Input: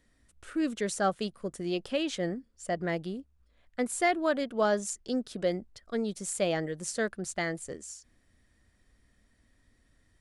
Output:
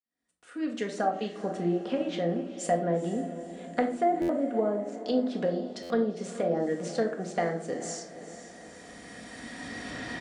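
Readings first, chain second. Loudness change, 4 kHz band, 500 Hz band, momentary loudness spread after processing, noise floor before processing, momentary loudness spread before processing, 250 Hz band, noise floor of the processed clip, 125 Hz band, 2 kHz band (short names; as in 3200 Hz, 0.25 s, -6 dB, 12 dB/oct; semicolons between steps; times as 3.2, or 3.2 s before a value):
+1.5 dB, -3.0 dB, +2.5 dB, 17 LU, -68 dBFS, 11 LU, +3.0 dB, -51 dBFS, +3.0 dB, -3.5 dB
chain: opening faded in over 3.15 s; recorder AGC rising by 11 dB/s; treble ducked by the level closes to 510 Hz, closed at -24 dBFS; HPF 210 Hz 12 dB/oct; bell 760 Hz +7 dB 0.22 oct; in parallel at -1 dB: compressor, threshold -41 dBFS, peak gain reduction 15.5 dB; on the sum: diffused feedback echo 0.462 s, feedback 52%, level -12.5 dB; shoebox room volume 580 m³, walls furnished, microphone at 1.8 m; downsampling 22050 Hz; stuck buffer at 4.21/5.82, samples 512, times 6; gain -1 dB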